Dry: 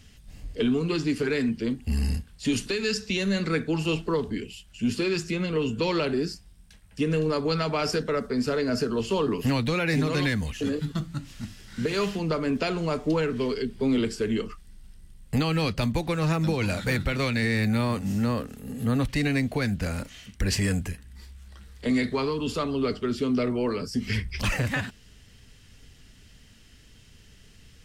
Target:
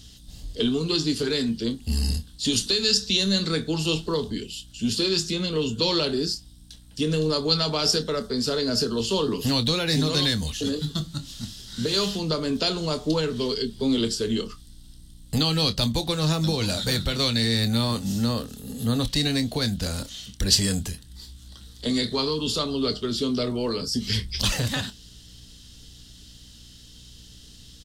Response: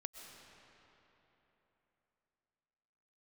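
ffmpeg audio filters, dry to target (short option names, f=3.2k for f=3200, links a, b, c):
-filter_complex "[0:a]highshelf=f=2.9k:t=q:w=3:g=7.5,asplit=2[a][b];[b]adelay=26,volume=-12dB[c];[a][c]amix=inputs=2:normalize=0,aeval=exprs='val(0)+0.00316*(sin(2*PI*60*n/s)+sin(2*PI*2*60*n/s)/2+sin(2*PI*3*60*n/s)/3+sin(2*PI*4*60*n/s)/4+sin(2*PI*5*60*n/s)/5)':c=same"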